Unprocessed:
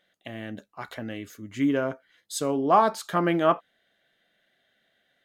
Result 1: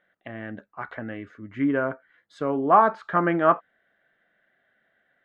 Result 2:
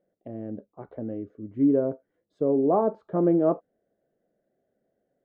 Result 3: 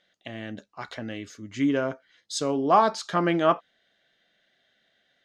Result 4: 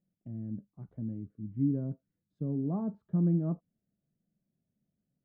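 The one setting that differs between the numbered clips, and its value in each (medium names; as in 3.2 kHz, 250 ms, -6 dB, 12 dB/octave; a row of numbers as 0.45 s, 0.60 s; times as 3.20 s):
resonant low-pass, frequency: 1.6 kHz, 470 Hz, 5.7 kHz, 170 Hz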